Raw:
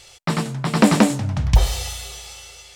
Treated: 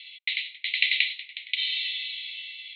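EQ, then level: Chebyshev band-pass 2–4.1 kHz, order 5; +6.5 dB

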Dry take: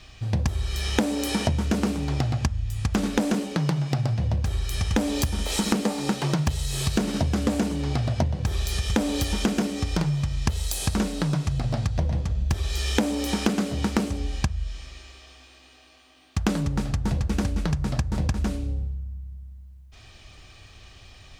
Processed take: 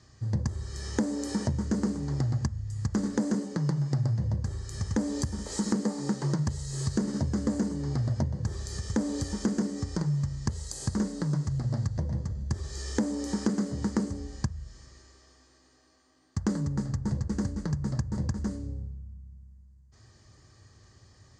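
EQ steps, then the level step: tone controls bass +12 dB, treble +8 dB; cabinet simulation 160–6800 Hz, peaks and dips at 170 Hz -7 dB, 260 Hz -4 dB, 710 Hz -8 dB, 1.4 kHz -5 dB, 2.5 kHz -4 dB, 5.5 kHz -9 dB; high-order bell 3 kHz -15 dB 1 oct; -6.0 dB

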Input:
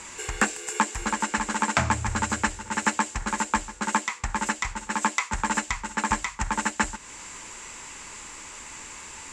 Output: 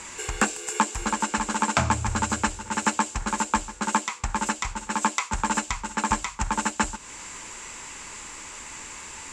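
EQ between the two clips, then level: dynamic bell 1.9 kHz, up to -7 dB, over -44 dBFS, Q 3.5; +1.5 dB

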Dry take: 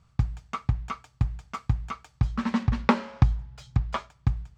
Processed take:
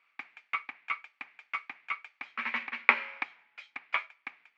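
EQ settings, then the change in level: steep high-pass 260 Hz 36 dB/octave; resonant low-pass 2.3 kHz, resonance Q 6.2; tilt shelf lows -9.5 dB, about 760 Hz; -9.5 dB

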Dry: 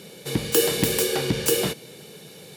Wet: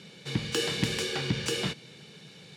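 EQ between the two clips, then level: high-pass 83 Hz; distance through air 110 m; peaking EQ 490 Hz -11 dB 2 oct; 0.0 dB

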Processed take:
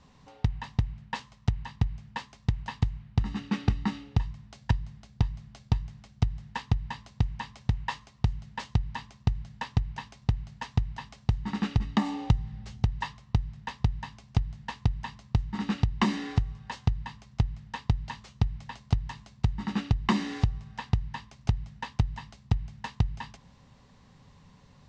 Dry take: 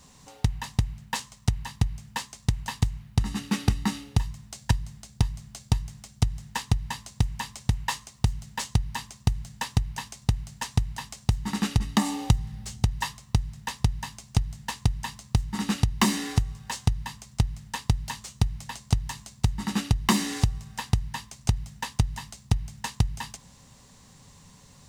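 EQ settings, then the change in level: distance through air 160 m; treble shelf 10 kHz -11 dB; -2.0 dB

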